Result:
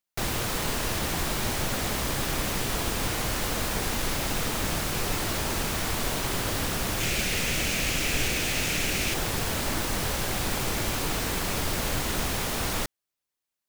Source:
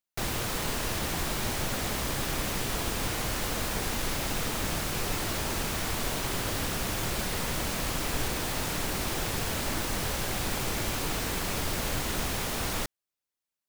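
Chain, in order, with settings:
0:07.00–0:09.14: graphic EQ with 15 bands 1,000 Hz −7 dB, 2,500 Hz +9 dB, 6,300 Hz +4 dB
level +2.5 dB

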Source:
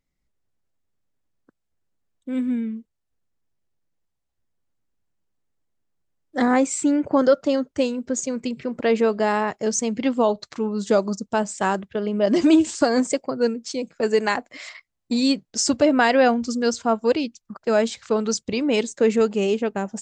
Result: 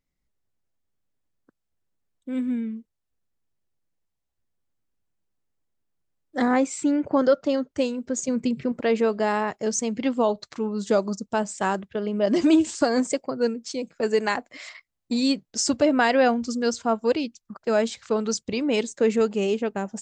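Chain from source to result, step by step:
0:06.48–0:07.71: low-pass filter 6,700 Hz 12 dB per octave
0:08.28–0:08.72: parametric band 140 Hz +8.5 dB 2.3 octaves
level −2.5 dB

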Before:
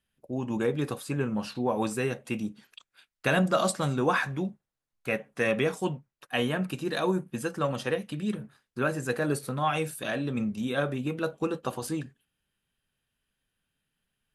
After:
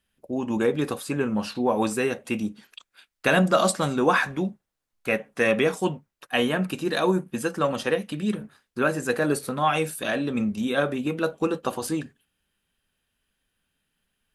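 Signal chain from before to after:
parametric band 130 Hz −11.5 dB 0.28 octaves
level +5 dB

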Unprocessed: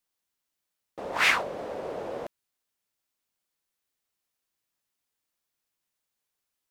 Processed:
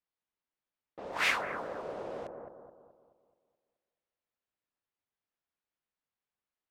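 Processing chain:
low-pass that shuts in the quiet parts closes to 2,900 Hz, open at −28 dBFS
0:01.11–0:01.86: surface crackle 340 per second → 100 per second −51 dBFS
bucket-brigade delay 214 ms, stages 2,048, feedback 46%, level −5 dB
level −6.5 dB

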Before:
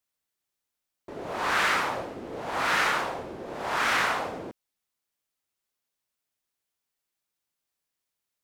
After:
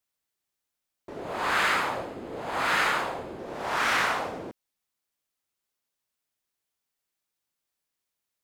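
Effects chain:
0:01.20–0:03.39: notch filter 5,700 Hz, Q 7.6

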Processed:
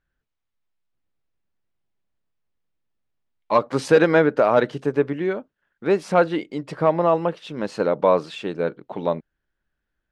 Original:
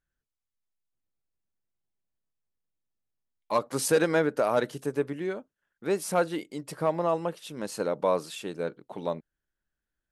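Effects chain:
low-pass filter 3,400 Hz 12 dB per octave
level +8 dB

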